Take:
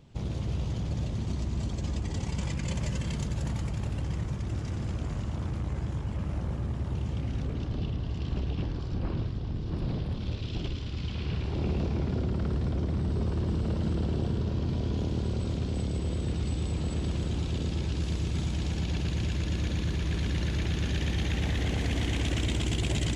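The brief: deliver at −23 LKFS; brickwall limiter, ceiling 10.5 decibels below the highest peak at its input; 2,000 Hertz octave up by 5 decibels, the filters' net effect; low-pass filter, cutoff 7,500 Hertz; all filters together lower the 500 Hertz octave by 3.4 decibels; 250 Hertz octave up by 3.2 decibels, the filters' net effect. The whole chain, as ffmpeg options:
ffmpeg -i in.wav -af "lowpass=7500,equalizer=frequency=250:width_type=o:gain=6.5,equalizer=frequency=500:width_type=o:gain=-8.5,equalizer=frequency=2000:width_type=o:gain=6.5,volume=11dB,alimiter=limit=-14.5dB:level=0:latency=1" out.wav

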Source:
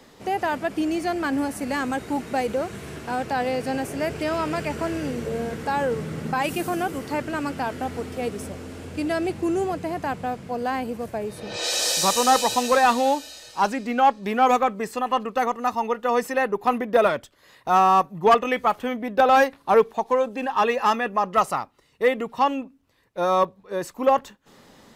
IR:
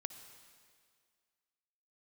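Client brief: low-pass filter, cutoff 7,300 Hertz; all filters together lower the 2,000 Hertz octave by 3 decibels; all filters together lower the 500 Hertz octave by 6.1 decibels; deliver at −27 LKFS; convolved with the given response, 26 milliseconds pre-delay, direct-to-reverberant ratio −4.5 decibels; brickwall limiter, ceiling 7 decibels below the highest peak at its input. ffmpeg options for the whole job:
-filter_complex "[0:a]lowpass=7300,equalizer=frequency=500:width_type=o:gain=-7,equalizer=frequency=2000:width_type=o:gain=-3.5,alimiter=limit=-17dB:level=0:latency=1,asplit=2[link_01][link_02];[1:a]atrim=start_sample=2205,adelay=26[link_03];[link_02][link_03]afir=irnorm=-1:irlink=0,volume=7dB[link_04];[link_01][link_04]amix=inputs=2:normalize=0,volume=-4dB"

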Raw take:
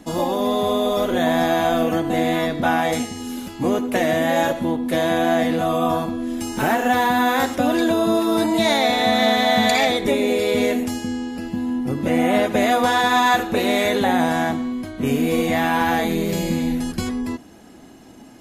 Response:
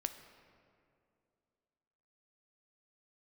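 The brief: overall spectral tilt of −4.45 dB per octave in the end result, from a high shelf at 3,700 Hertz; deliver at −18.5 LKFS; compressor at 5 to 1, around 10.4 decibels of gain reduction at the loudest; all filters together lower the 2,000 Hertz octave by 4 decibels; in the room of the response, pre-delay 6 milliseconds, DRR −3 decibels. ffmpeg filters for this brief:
-filter_complex "[0:a]equalizer=frequency=2000:width_type=o:gain=-6.5,highshelf=frequency=3700:gain=6.5,acompressor=threshold=-26dB:ratio=5,asplit=2[link_01][link_02];[1:a]atrim=start_sample=2205,adelay=6[link_03];[link_02][link_03]afir=irnorm=-1:irlink=0,volume=3.5dB[link_04];[link_01][link_04]amix=inputs=2:normalize=0,volume=5.5dB"

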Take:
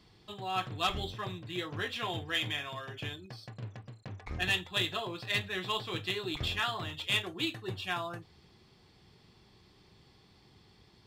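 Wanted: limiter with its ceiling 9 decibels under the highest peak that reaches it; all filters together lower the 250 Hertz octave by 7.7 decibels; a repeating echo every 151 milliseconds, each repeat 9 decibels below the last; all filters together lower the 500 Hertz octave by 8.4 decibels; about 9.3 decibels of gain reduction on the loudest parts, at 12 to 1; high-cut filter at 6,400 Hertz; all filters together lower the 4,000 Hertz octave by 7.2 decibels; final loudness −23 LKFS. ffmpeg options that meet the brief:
ffmpeg -i in.wav -af "lowpass=6400,equalizer=frequency=250:width_type=o:gain=-8.5,equalizer=frequency=500:width_type=o:gain=-9,equalizer=frequency=4000:width_type=o:gain=-9,acompressor=threshold=-39dB:ratio=12,alimiter=level_in=12.5dB:limit=-24dB:level=0:latency=1,volume=-12.5dB,aecho=1:1:151|302|453|604:0.355|0.124|0.0435|0.0152,volume=23dB" out.wav

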